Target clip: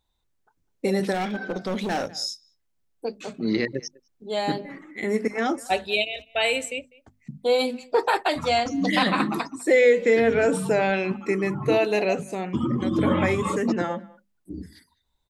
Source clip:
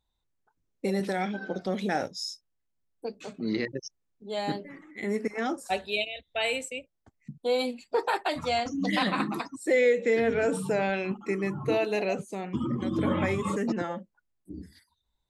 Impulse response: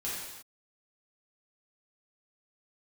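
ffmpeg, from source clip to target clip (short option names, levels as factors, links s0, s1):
-filter_complex "[0:a]asplit=2[s0][s1];[s1]adelay=200,highpass=300,lowpass=3400,asoftclip=type=hard:threshold=0.075,volume=0.0708[s2];[s0][s2]amix=inputs=2:normalize=0,asettb=1/sr,asplit=3[s3][s4][s5];[s3]atrim=end=1.144[s6];[s4]atrim=start=1.14:end=2.07,asetpts=PTS-STARTPTS,afade=t=in:d=0.004:c=qsin,afade=t=out:st=0.926:d=0.004:c=qsin,volume=25.1,asoftclip=hard,volume=0.0398[s7];[s5]atrim=start=2.066[s8];[s6][s7]acrossfade=d=0.004:c1=hsin:c2=qsin[s9];[s9][s8]acrossfade=d=0.004:c1=qsin:c2=hsin,bandreject=f=50:t=h:w=6,bandreject=f=100:t=h:w=6,bandreject=f=150:t=h:w=6,bandreject=f=200:t=h:w=6,bandreject=f=250:t=h:w=6,volume=1.88"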